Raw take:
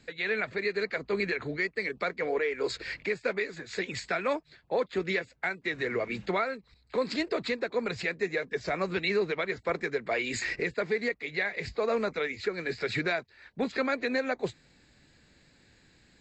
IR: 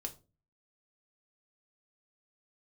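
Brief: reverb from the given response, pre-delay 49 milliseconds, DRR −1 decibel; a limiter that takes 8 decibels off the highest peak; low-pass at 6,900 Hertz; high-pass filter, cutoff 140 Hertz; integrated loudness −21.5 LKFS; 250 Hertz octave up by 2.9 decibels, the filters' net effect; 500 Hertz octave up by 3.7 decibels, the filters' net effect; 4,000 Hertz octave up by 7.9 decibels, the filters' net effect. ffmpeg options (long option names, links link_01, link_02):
-filter_complex "[0:a]highpass=140,lowpass=6900,equalizer=frequency=250:width_type=o:gain=3,equalizer=frequency=500:width_type=o:gain=3.5,equalizer=frequency=4000:width_type=o:gain=9,alimiter=limit=-19.5dB:level=0:latency=1,asplit=2[link_01][link_02];[1:a]atrim=start_sample=2205,adelay=49[link_03];[link_02][link_03]afir=irnorm=-1:irlink=0,volume=3dB[link_04];[link_01][link_04]amix=inputs=2:normalize=0,volume=4.5dB"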